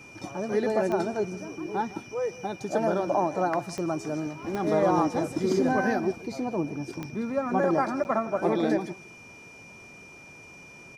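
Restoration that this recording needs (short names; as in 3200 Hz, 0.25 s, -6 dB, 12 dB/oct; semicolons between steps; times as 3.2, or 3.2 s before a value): de-click; notch 2400 Hz, Q 30; interpolate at 8.04, 9.9 ms; inverse comb 0.158 s -19 dB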